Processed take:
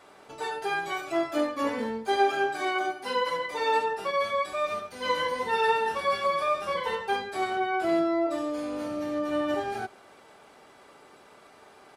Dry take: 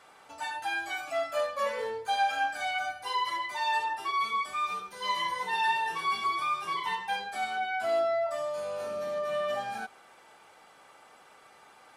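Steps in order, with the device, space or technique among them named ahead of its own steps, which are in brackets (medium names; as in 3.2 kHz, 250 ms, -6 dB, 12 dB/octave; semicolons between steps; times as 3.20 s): octave pedal (harmony voices -12 st 0 dB); 2.20–3.20 s: resonant low shelf 100 Hz -14 dB, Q 1.5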